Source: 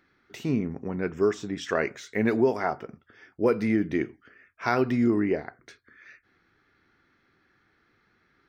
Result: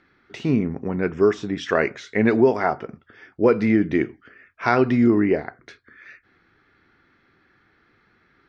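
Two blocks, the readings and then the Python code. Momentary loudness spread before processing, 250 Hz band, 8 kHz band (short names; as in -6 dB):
10 LU, +6.0 dB, n/a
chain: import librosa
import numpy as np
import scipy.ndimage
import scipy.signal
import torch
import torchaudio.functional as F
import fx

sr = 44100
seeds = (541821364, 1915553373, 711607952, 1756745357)

y = scipy.signal.sosfilt(scipy.signal.butter(2, 4600.0, 'lowpass', fs=sr, output='sos'), x)
y = y * 10.0 ** (6.0 / 20.0)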